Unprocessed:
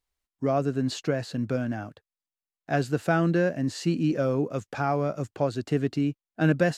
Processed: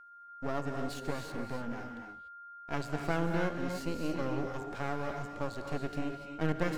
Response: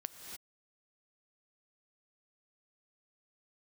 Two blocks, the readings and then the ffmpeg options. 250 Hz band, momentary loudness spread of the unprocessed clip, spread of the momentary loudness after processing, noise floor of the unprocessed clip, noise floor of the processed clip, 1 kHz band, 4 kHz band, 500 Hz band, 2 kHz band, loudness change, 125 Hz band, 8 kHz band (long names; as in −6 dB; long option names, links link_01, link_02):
−10.0 dB, 6 LU, 11 LU, below −85 dBFS, −50 dBFS, −6.0 dB, −7.5 dB, −10.0 dB, −7.5 dB, −9.5 dB, −10.5 dB, −8.0 dB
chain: -filter_complex "[0:a]aeval=exprs='max(val(0),0)':channel_layout=same,aeval=exprs='val(0)+0.00562*sin(2*PI*1400*n/s)':channel_layout=same[link_01];[1:a]atrim=start_sample=2205[link_02];[link_01][link_02]afir=irnorm=-1:irlink=0,volume=-2.5dB"